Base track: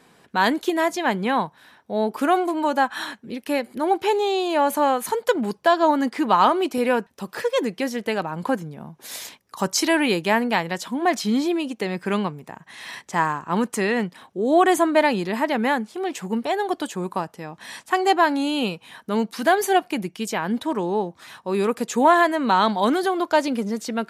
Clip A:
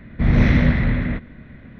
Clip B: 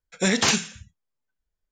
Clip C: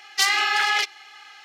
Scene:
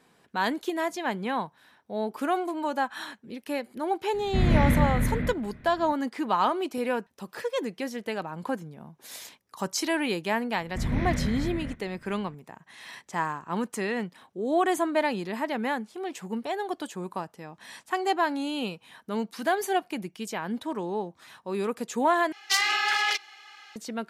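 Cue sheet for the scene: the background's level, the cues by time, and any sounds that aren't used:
base track -7.5 dB
4.14 s: add A -6.5 dB
10.56 s: add A -13 dB
22.32 s: replace with C -4 dB
not used: B

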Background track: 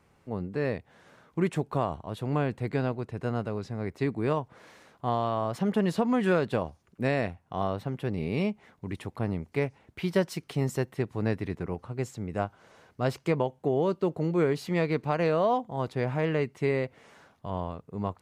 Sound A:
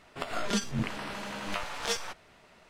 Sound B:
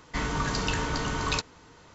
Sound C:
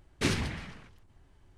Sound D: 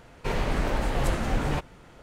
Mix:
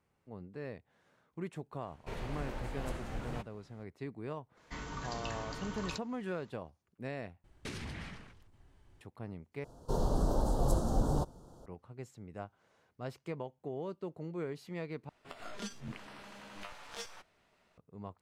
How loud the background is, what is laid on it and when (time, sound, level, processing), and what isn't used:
background track -14 dB
1.82 s: add D -14.5 dB
4.57 s: add B -13.5 dB
7.44 s: replace with C -2.5 dB + compression 12:1, threshold -35 dBFS
9.64 s: replace with D -3.5 dB + Butterworth band-stop 2.2 kHz, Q 0.57
15.09 s: replace with A -13 dB

